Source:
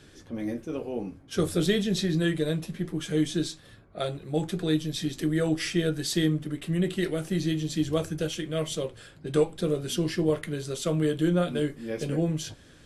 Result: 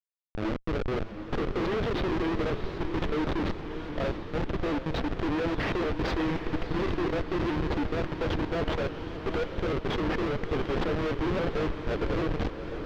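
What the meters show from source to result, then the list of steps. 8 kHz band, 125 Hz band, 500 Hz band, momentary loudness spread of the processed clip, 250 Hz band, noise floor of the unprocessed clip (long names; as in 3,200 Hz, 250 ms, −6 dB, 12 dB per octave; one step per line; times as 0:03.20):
below −15 dB, −3.5 dB, −1.5 dB, 4 LU, −3.0 dB, −53 dBFS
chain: high-pass filter 340 Hz 24 dB per octave
high-shelf EQ 7,000 Hz −10 dB
brickwall limiter −24.5 dBFS, peak gain reduction 10.5 dB
comparator with hysteresis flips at −33.5 dBFS
high-frequency loss of the air 250 metres
feedback delay with all-pass diffusion 720 ms, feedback 57%, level −8 dB
pitch modulation by a square or saw wave saw up 3.6 Hz, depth 100 cents
level +8 dB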